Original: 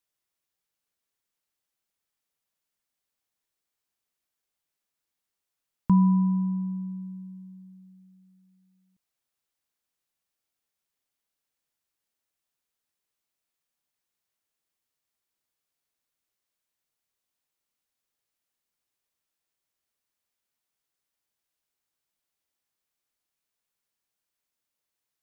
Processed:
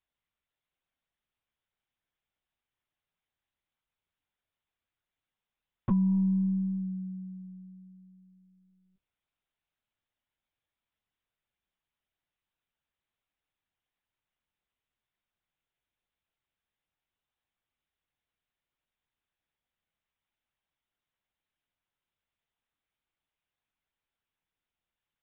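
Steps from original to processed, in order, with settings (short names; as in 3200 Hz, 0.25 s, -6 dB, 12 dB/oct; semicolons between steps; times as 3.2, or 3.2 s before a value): de-hum 82.17 Hz, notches 17; compressor 6:1, threshold -23 dBFS, peak gain reduction 7 dB; LPC vocoder at 8 kHz pitch kept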